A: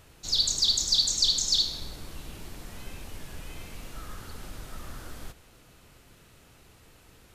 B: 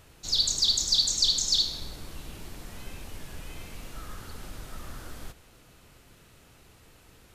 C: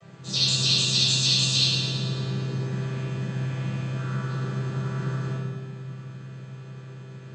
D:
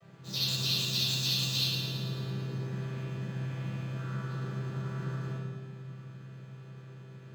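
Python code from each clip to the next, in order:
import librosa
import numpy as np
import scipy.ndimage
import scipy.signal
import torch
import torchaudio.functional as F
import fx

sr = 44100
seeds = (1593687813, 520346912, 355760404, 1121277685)

y1 = x
y2 = fx.chord_vocoder(y1, sr, chord='major triad', root=48)
y2 = fx.echo_thinned(y2, sr, ms=110, feedback_pct=67, hz=220.0, wet_db=-8)
y2 = fx.room_shoebox(y2, sr, seeds[0], volume_m3=640.0, walls='mixed', distance_m=6.3)
y2 = F.gain(torch.from_numpy(y2), -7.5).numpy()
y3 = scipy.ndimage.median_filter(y2, 5, mode='constant')
y3 = F.gain(torch.from_numpy(y3), -7.0).numpy()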